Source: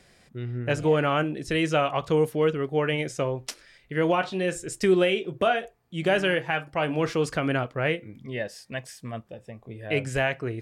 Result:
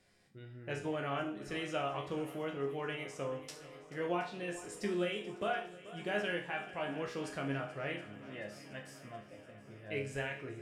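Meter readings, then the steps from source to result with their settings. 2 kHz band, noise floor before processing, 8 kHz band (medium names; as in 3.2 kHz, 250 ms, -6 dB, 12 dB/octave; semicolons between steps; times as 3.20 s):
-11.5 dB, -60 dBFS, -12.5 dB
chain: chord resonator C#2 major, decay 0.46 s; shuffle delay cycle 722 ms, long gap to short 1.5:1, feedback 62%, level -17 dB; trim +1 dB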